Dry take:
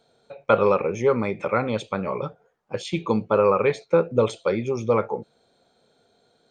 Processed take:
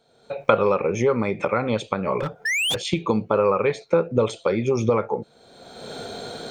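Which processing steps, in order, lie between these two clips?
recorder AGC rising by 34 dB/s; 2.45–2.75 s: painted sound rise 1.7–3.7 kHz -17 dBFS; 2.19–2.84 s: overload inside the chain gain 20.5 dB; trim -1 dB

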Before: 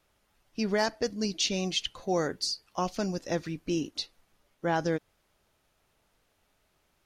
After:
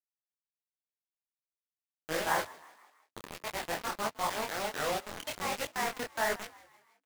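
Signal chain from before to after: reverse the whole clip; on a send at -14 dB: reverberation, pre-delay 22 ms; on the sum: ever faster or slower copies 256 ms, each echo +2 st, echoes 2; resonant high shelf 2.8 kHz -11 dB, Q 1.5; in parallel at -0.5 dB: level held to a coarse grid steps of 19 dB; on the sum: three-band isolator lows -14 dB, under 580 Hz, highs -12 dB, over 2.9 kHz; bit crusher 5-bit; frequency-shifting echo 160 ms, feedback 51%, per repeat +67 Hz, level -21 dB; detune thickener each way 49 cents

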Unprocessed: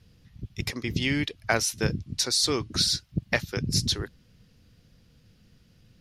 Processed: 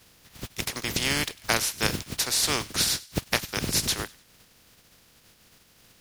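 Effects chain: spectral contrast reduction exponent 0.36; feedback echo behind a high-pass 99 ms, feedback 37%, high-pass 1.9 kHz, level -20.5 dB

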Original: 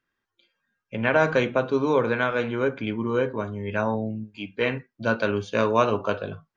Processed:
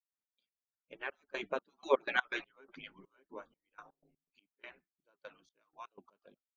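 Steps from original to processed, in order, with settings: harmonic-percussive separation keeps percussive; Doppler pass-by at 2.15 s, 7 m/s, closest 1.4 m; trance gate ".x.x..xxx..xx..x" 123 bpm -24 dB

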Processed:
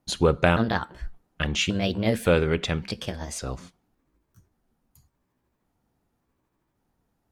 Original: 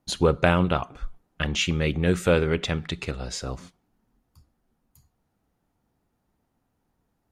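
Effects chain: pitch shift switched off and on +4 st, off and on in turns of 564 ms

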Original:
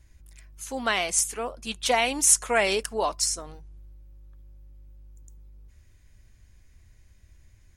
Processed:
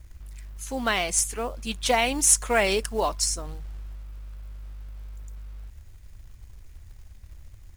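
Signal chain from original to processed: bass shelf 160 Hz +10.5 dB; companded quantiser 6-bit

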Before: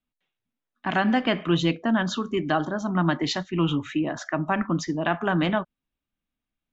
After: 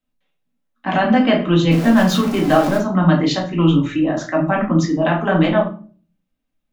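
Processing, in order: 1.71–2.78 s: jump at every zero crossing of -27 dBFS; peaking EQ 550 Hz +4 dB 0.67 oct; simulated room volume 280 m³, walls furnished, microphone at 2.1 m; trim +1.5 dB

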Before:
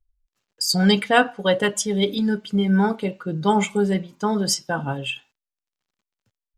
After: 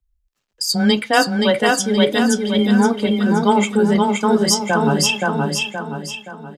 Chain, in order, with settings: frequency shift +14 Hz; feedback delay 523 ms, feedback 42%, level -4 dB; gain riding within 5 dB 0.5 s; trim +4 dB

